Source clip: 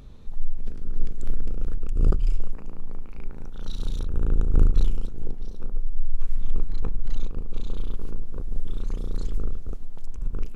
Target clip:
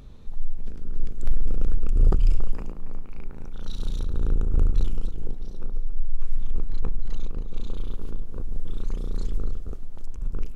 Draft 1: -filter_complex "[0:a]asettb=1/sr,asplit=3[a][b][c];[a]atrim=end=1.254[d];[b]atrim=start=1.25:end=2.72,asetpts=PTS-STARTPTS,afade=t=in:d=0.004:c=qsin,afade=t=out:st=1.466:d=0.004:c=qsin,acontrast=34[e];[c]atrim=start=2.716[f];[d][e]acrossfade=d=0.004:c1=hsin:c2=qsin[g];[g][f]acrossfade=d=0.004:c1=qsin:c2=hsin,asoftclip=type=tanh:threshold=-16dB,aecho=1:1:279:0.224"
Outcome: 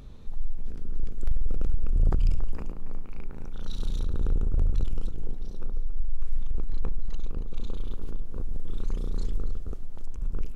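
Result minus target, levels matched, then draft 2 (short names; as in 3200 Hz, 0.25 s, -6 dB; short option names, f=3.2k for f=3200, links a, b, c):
soft clip: distortion +8 dB
-filter_complex "[0:a]asettb=1/sr,asplit=3[a][b][c];[a]atrim=end=1.254[d];[b]atrim=start=1.25:end=2.72,asetpts=PTS-STARTPTS,afade=t=in:d=0.004:c=qsin,afade=t=out:st=1.466:d=0.004:c=qsin,acontrast=34[e];[c]atrim=start=2.716[f];[d][e]acrossfade=d=0.004:c1=hsin:c2=qsin[g];[g][f]acrossfade=d=0.004:c1=qsin:c2=hsin,asoftclip=type=tanh:threshold=-8.5dB,aecho=1:1:279:0.224"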